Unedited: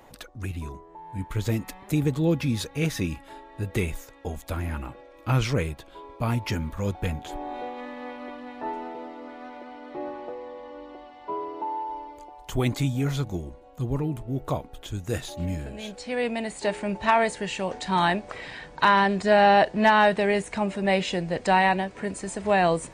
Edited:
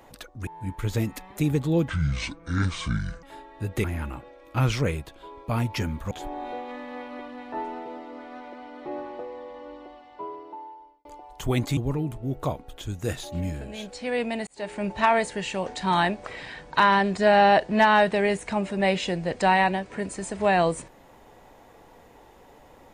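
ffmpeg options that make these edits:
-filter_complex "[0:a]asplit=9[a][b][c][d][e][f][g][h][i];[a]atrim=end=0.472[j];[b]atrim=start=0.988:end=2.404[k];[c]atrim=start=2.4:end=3.21,asetpts=PTS-STARTPTS,asetrate=26460,aresample=44100[l];[d]atrim=start=3.206:end=3.822[m];[e]atrim=start=4.558:end=6.832[n];[f]atrim=start=7.198:end=12.14,asetpts=PTS-STARTPTS,afade=t=out:st=3.602:d=1.34[o];[g]atrim=start=12.14:end=12.862,asetpts=PTS-STARTPTS,afade=t=in:d=0.004:c=hsin[p];[h]atrim=start=13.818:end=16.52,asetpts=PTS-STARTPTS,afade=t=out:st=2.698:d=0.004:c=hsin[q];[i]atrim=start=16.52,asetpts=PTS-STARTPTS,afade=t=in:d=0.37[r];[j][k]acrossfade=d=0.004:c1=hsin:c2=hsin[s];[s][l]acrossfade=d=0.004:c1=hsin:c2=hsin[t];[t][m]acrossfade=d=0.004:c1=hsin:c2=hsin[u];[u][n]acrossfade=d=0.004:c1=hsin:c2=hsin[v];[o][p]concat=n=2:v=0:a=1[w];[v][w]acrossfade=d=0.004:c1=hsin:c2=hsin[x];[q][r]concat=n=2:v=0:a=1[y];[x][y]acrossfade=d=0.004:c1=hsin:c2=hsin"

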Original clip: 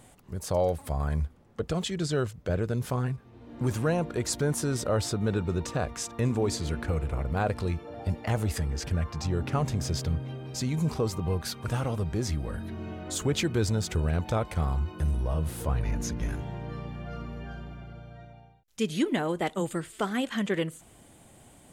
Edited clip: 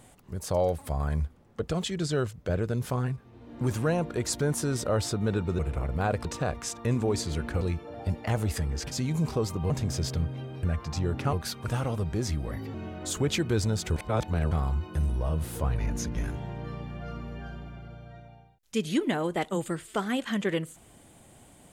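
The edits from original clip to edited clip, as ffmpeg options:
-filter_complex "[0:a]asplit=12[a][b][c][d][e][f][g][h][i][j][k][l];[a]atrim=end=5.592[m];[b]atrim=start=6.948:end=7.612[n];[c]atrim=start=5.588:end=6.952[o];[d]atrim=start=7.608:end=8.912[p];[e]atrim=start=10.538:end=11.332[q];[f]atrim=start=9.608:end=10.542[r];[g]atrim=start=8.908:end=9.612[s];[h]atrim=start=11.328:end=12.514[t];[i]atrim=start=12.51:end=12.79,asetpts=PTS-STARTPTS,asetrate=53361,aresample=44100[u];[j]atrim=start=12.786:end=14.012[v];[k]atrim=start=14.008:end=14.562,asetpts=PTS-STARTPTS,areverse[w];[l]atrim=start=14.558[x];[m][n]acrossfade=d=0.004:c1=hsin:c2=hsin[y];[y][o]acrossfade=d=0.004:c1=hsin:c2=hsin[z];[z][p]acrossfade=d=0.004:c1=hsin:c2=hsin[aa];[aa][q]acrossfade=d=0.004:c1=hsin:c2=hsin[ab];[ab][r]acrossfade=d=0.004:c1=hsin:c2=hsin[ac];[ac][s]acrossfade=d=0.004:c1=hsin:c2=hsin[ad];[ad][t]acrossfade=d=0.004:c1=hsin:c2=hsin[ae];[ae][u]acrossfade=d=0.004:c1=hsin:c2=hsin[af];[af][v]acrossfade=d=0.004:c1=hsin:c2=hsin[ag];[ag][w]acrossfade=d=0.004:c1=hsin:c2=hsin[ah];[ah][x]acrossfade=d=0.004:c1=hsin:c2=hsin"

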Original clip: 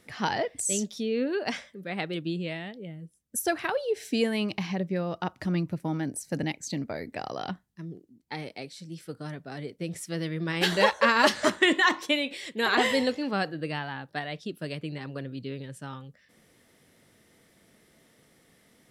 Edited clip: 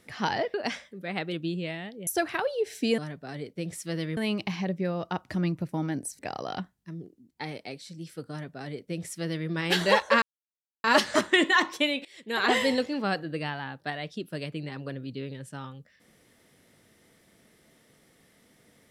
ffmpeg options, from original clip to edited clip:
-filter_complex "[0:a]asplit=8[a][b][c][d][e][f][g][h];[a]atrim=end=0.542[i];[b]atrim=start=1.358:end=2.892[j];[c]atrim=start=3.368:end=4.282[k];[d]atrim=start=9.208:end=10.402[l];[e]atrim=start=4.278:end=6.302[m];[f]atrim=start=7.098:end=11.13,asetpts=PTS-STARTPTS,afade=t=out:st=4.028:d=0.004:c=hsin,apad=pad_dur=0.62[n];[g]atrim=start=11.13:end=12.34,asetpts=PTS-STARTPTS,afade=t=in:d=0.004:c=hsin,afade=t=out:st=1.206:d=0.004:c=hsin:silence=0.0891251[o];[h]atrim=start=12.34,asetpts=PTS-STARTPTS,afade=t=in:d=0.45:silence=0.0891251[p];[i][j]acrossfade=d=0.004:c1=hsin:c2=hsin[q];[q][k]acrossfade=d=0.004:c1=hsin:c2=hsin[r];[r][l]acrossfade=d=0.004:c1=hsin:c2=hsin[s];[s][m]acrossfade=d=0.004:c1=hsin:c2=hsin[t];[n][o][p]concat=n=3:v=0:a=1[u];[t][u]acrossfade=d=0.004:c1=hsin:c2=hsin"

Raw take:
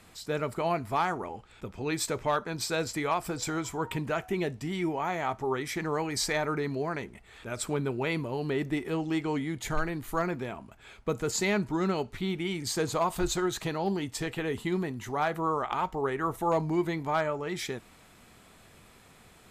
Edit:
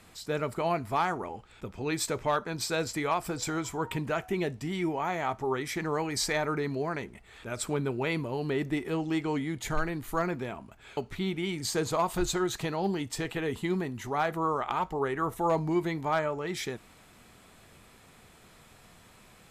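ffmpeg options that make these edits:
-filter_complex "[0:a]asplit=2[a][b];[a]atrim=end=10.972[c];[b]atrim=start=11.988[d];[c][d]acrossfade=d=0.004:c1=hsin:c2=hsin"

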